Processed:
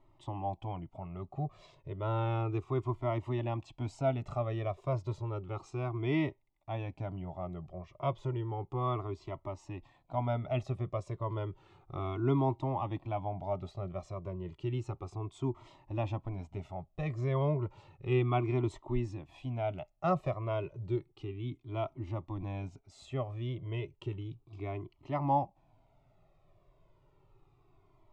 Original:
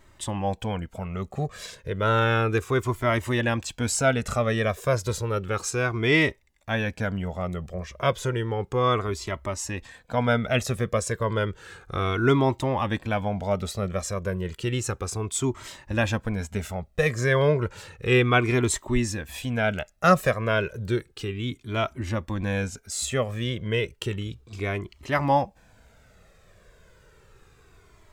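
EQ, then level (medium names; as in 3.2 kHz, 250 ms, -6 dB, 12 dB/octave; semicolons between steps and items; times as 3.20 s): low-pass 1.9 kHz 12 dB/octave; static phaser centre 320 Hz, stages 8; -6.0 dB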